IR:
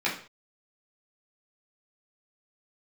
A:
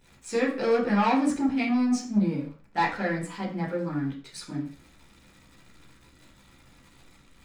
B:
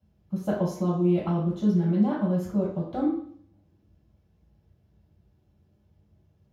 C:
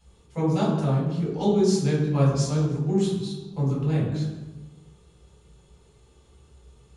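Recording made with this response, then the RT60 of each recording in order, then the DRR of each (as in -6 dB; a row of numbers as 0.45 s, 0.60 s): A; 0.45 s, 0.60 s, 1.2 s; -8.0 dB, -7.0 dB, -7.0 dB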